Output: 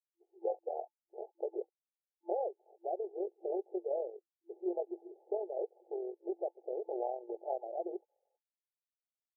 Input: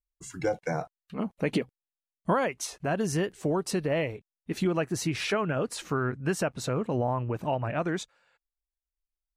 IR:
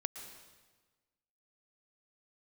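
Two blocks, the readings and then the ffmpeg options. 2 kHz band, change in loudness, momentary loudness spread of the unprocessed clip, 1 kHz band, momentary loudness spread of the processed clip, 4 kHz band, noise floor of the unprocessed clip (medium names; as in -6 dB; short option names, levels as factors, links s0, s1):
under -40 dB, -10.0 dB, 8 LU, -10.0 dB, 10 LU, under -40 dB, under -85 dBFS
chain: -af "tremolo=f=44:d=0.519,afftfilt=real='re*between(b*sr/4096,340,870)':imag='im*between(b*sr/4096,340,870)':win_size=4096:overlap=0.75,volume=0.631"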